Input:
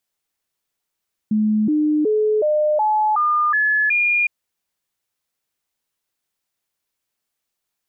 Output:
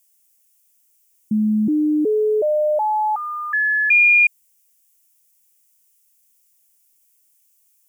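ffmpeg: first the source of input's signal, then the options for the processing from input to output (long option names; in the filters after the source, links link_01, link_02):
-f lavfi -i "aevalsrc='0.188*clip(min(mod(t,0.37),0.37-mod(t,0.37))/0.005,0,1)*sin(2*PI*214*pow(2,floor(t/0.37)/2)*mod(t,0.37))':duration=2.96:sample_rate=44100"
-af "bass=frequency=250:gain=0,treble=frequency=4000:gain=12,aexciter=amount=1.5:drive=2.3:freq=2200,equalizer=frequency=1200:width=3.2:gain=-9.5"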